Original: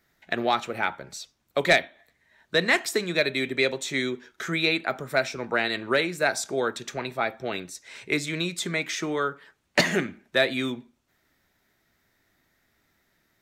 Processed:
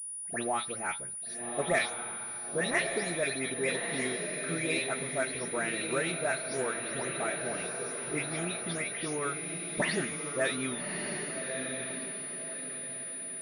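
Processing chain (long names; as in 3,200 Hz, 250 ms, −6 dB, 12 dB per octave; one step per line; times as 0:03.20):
every frequency bin delayed by itself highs late, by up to 208 ms
parametric band 91 Hz +8 dB 0.84 octaves
feedback delay with all-pass diffusion 1,208 ms, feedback 41%, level −4.5 dB
switching amplifier with a slow clock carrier 9,700 Hz
level −7.5 dB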